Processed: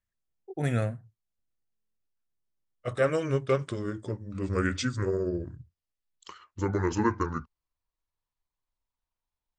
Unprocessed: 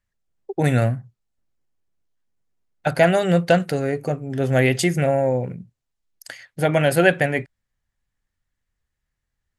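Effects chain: gliding pitch shift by -11.5 st starting unshifted; stuck buffer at 1.72, samples 1024, times 10; gain -8.5 dB

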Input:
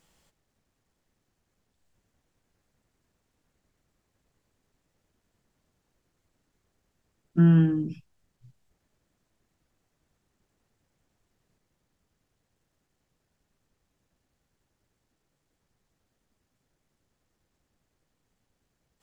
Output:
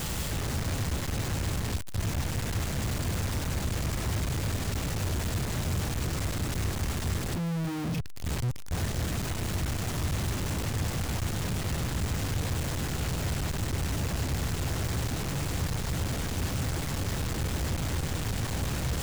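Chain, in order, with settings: infinite clipping; bell 85 Hz +12.5 dB 1.9 oct

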